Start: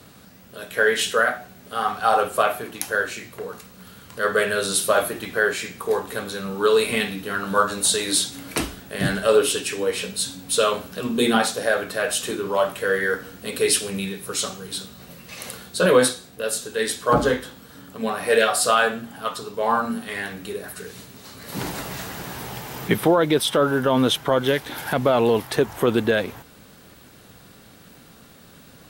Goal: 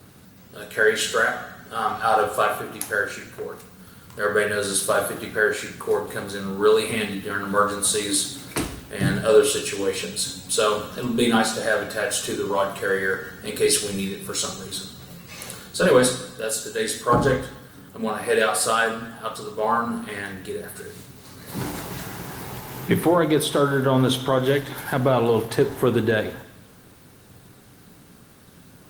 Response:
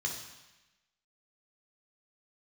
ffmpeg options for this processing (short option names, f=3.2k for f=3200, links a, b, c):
-filter_complex "[0:a]asplit=2[a][b];[b]lowshelf=f=180:g=2[c];[1:a]atrim=start_sample=2205,asetrate=48510,aresample=44100[d];[c][d]afir=irnorm=-1:irlink=0,volume=-9.5dB[e];[a][e]amix=inputs=2:normalize=0,volume=1dB" -ar 48000 -c:a libopus -b:a 32k